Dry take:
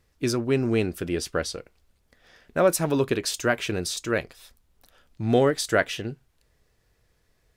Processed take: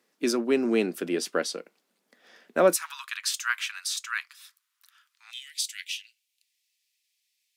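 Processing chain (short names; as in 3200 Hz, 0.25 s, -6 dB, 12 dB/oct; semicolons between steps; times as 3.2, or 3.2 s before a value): steep high-pass 190 Hz 48 dB/oct, from 2.74 s 1100 Hz, from 5.3 s 2300 Hz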